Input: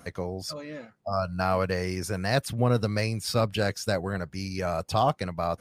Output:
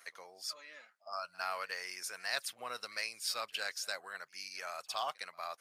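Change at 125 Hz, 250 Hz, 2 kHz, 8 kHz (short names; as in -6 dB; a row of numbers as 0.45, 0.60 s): under -40 dB, -34.5 dB, -5.5 dB, -4.0 dB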